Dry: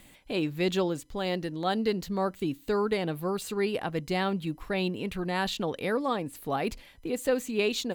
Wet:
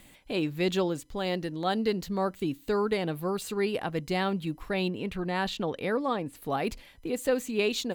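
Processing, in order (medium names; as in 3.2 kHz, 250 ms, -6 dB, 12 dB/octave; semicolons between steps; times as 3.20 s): 4.89–6.42 s: treble shelf 5.6 kHz -7.5 dB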